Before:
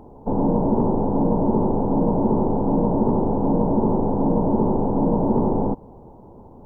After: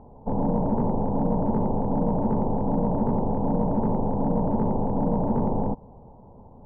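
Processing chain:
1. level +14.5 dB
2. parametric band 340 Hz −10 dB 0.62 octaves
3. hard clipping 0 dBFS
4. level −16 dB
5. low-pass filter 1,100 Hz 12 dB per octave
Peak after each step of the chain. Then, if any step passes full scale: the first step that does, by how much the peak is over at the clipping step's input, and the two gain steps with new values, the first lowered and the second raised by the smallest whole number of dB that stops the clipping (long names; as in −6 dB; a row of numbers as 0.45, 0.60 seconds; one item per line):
+5.5, +4.5, 0.0, −16.0, −15.5 dBFS
step 1, 4.5 dB
step 1 +9.5 dB, step 4 −11 dB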